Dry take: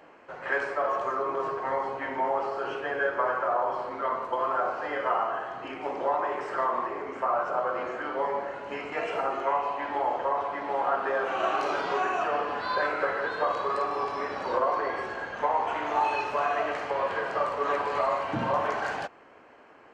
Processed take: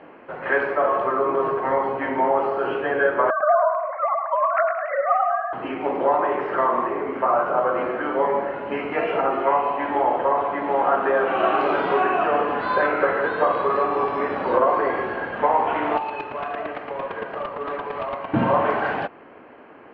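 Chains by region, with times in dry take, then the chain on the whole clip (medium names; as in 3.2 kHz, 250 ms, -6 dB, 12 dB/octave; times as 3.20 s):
3.30–5.53 s: formants replaced by sine waves + steep low-pass 2.5 kHz 48 dB/octave + thinning echo 105 ms, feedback 56%, high-pass 590 Hz, level -6.5 dB
15.97–18.34 s: square tremolo 8.8 Hz, depth 65%, duty 10% + hard clipper -30.5 dBFS
whole clip: low-pass 3.2 kHz 24 dB/octave; peaking EQ 240 Hz +6.5 dB 2.1 oct; trim +5.5 dB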